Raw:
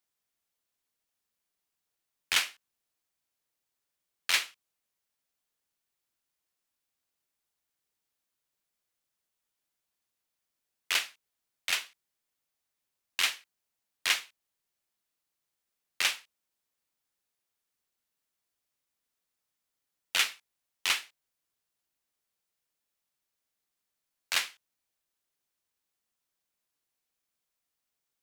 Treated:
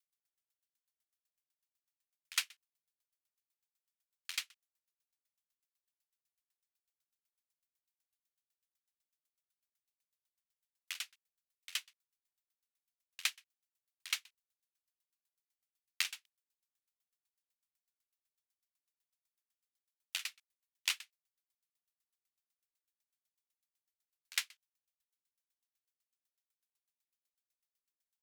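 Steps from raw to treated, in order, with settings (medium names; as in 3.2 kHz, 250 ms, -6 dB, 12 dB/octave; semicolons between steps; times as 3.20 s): amplifier tone stack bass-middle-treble 10-0-10; sawtooth tremolo in dB decaying 8 Hz, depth 36 dB; trim +3 dB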